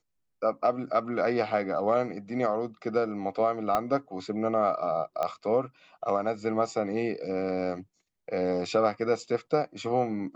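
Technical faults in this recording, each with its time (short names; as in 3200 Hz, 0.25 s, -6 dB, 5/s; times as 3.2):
3.75 pop -13 dBFS
5.23 pop -17 dBFS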